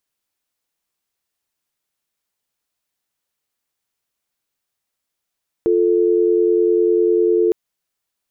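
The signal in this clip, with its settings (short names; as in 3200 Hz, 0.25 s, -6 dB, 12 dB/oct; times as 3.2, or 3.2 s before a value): call progress tone dial tone, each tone -15 dBFS 1.86 s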